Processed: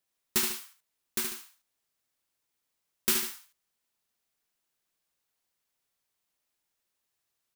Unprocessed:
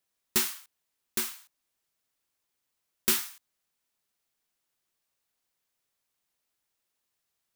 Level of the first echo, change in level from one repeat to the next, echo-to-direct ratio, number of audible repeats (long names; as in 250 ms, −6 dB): −6.5 dB, −7.5 dB, −6.0 dB, 2